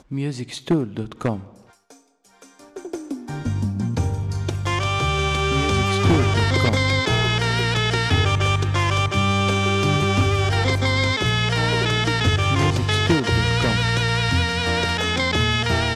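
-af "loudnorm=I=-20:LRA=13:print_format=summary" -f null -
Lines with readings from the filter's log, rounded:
Input Integrated:    -20.1 LUFS
Input True Peak:      -5.8 dBTP
Input LRA:             7.0 LU
Input Threshold:     -30.5 LUFS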